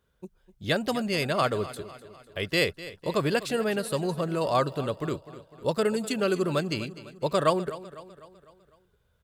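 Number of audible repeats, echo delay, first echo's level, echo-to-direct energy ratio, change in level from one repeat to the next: 4, 251 ms, -16.0 dB, -14.5 dB, -6.0 dB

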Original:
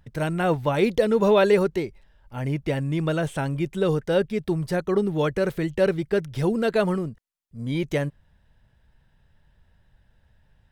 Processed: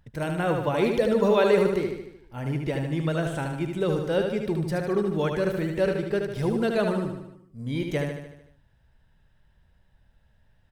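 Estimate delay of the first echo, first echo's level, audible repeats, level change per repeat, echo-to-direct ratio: 75 ms, -5.0 dB, 6, -5.0 dB, -3.5 dB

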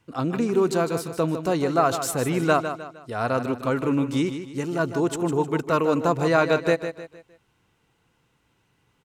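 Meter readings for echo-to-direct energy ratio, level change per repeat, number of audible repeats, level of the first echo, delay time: -9.0 dB, -8.5 dB, 4, -9.5 dB, 154 ms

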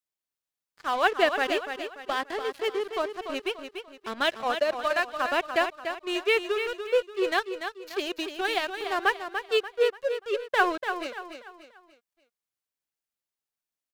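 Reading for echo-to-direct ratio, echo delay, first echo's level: -7.5 dB, 291 ms, -8.0 dB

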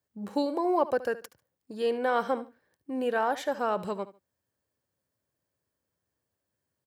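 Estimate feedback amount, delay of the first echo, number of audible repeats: 21%, 73 ms, 2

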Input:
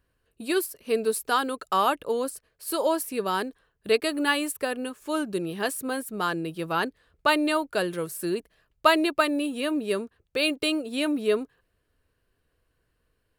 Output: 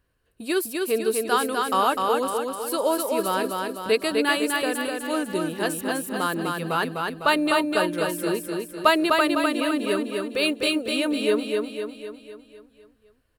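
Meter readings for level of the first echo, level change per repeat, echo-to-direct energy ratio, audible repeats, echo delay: -3.5 dB, -5.5 dB, -2.0 dB, 6, 252 ms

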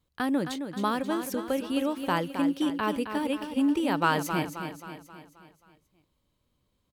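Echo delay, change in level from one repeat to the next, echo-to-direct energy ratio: 266 ms, -6.0 dB, -7.0 dB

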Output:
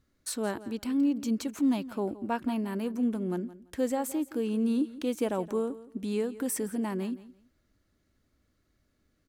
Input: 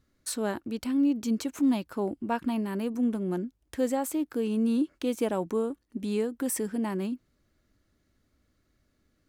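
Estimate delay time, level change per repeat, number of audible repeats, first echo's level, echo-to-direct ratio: 169 ms, -14.0 dB, 2, -17.0 dB, -17.0 dB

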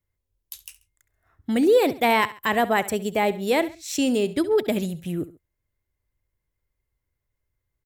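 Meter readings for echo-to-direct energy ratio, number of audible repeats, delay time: -16.0 dB, 2, 68 ms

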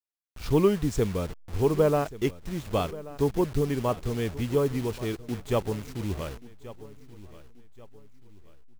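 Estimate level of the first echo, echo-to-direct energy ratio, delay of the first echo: -17.5 dB, -17.0 dB, 1132 ms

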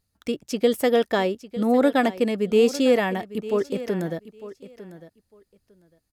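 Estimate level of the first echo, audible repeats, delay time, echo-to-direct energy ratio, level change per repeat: -15.5 dB, 2, 902 ms, -15.5 dB, -16.0 dB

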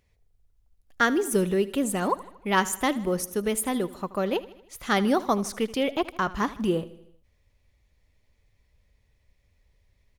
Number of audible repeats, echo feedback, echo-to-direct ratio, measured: 4, 55%, -16.5 dB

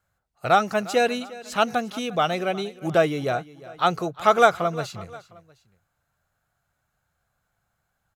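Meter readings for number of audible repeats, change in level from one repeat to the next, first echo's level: 2, -6.5 dB, -19.0 dB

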